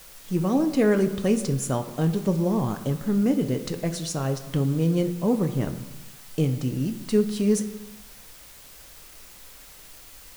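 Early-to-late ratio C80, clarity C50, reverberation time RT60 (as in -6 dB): 13.0 dB, 11.5 dB, 1.1 s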